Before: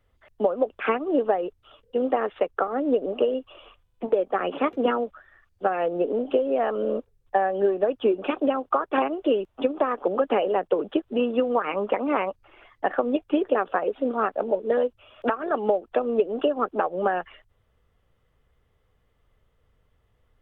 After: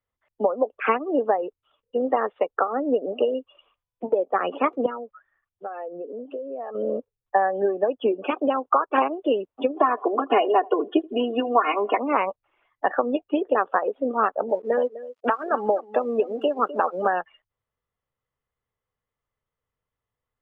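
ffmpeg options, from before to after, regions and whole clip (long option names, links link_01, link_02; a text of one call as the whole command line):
ffmpeg -i in.wav -filter_complex "[0:a]asettb=1/sr,asplit=3[link_01][link_02][link_03];[link_01]atrim=end=4.864[link_04];[link_02]atrim=start=4.86:end=6.75,asetpts=PTS-STARTPTS,afade=type=in:duration=0.004:curve=qsin,afade=type=out:start_time=1.886:duration=0.004:curve=qsin,lowpass=3200,acompressor=threshold=-38dB:ratio=2:attack=3.2:release=140:knee=1:detection=peak[link_05];[link_03]atrim=start=6.746[link_06];[link_04][link_05]acrossfade=duration=0.004:curve1=hsin:curve2=qsin[link_07];[link_07][link_06]acrossfade=duration=0.004:curve1=qsin:curve2=hsin,asettb=1/sr,asplit=3[link_08][link_09][link_10];[link_08]atrim=end=9.764[link_11];[link_09]atrim=start=9.76:end=11.98,asetpts=PTS-STARTPTS,afade=type=in:duration=0.004:curve=qsin,afade=type=out:start_time=2.216:duration=0.004:curve=qsin,bandreject=frequency=1600:width=21,aecho=1:1:2.8:0.92,atrim=end_sample=97902,aecho=1:1:81|162|243|324:0.0708|0.0404|0.023|0.0131,atrim=end_sample=97902[link_12];[link_10]atrim=start=11.976[link_13];[link_11][link_12]acrossfade=duration=0.004:curve1=hsin:curve2=qsin[link_14];[link_14][link_13]acrossfade=duration=0.004:curve1=qsin:curve2=hsin,asettb=1/sr,asplit=3[link_15][link_16][link_17];[link_15]atrim=end=14.494[link_18];[link_16]atrim=start=14.49:end=17.08,asetpts=PTS-STARTPTS,afade=type=in:duration=0.004:curve=qsin,afade=type=out:start_time=2.586:duration=0.004:curve=qsin,aeval=exprs='sgn(val(0))*max(abs(val(0))-0.00422,0)':channel_layout=same,aecho=1:1:253:0.2,atrim=end_sample=114219[link_19];[link_17]atrim=start=17.076[link_20];[link_18][link_19]acrossfade=duration=0.004:curve1=hsin:curve2=qsin[link_21];[link_21][link_20]acrossfade=duration=0.004:curve1=qsin:curve2=hsin,highshelf=frequency=2500:gain=11.5,afftdn=noise_reduction=18:noise_floor=-31,equalizer=frequency=125:width_type=o:width=1:gain=7,equalizer=frequency=250:width_type=o:width=1:gain=5,equalizer=frequency=500:width_type=o:width=1:gain=5,equalizer=frequency=1000:width_type=o:width=1:gain=11,equalizer=frequency=2000:width_type=o:width=1:gain=5,volume=-8.5dB" out.wav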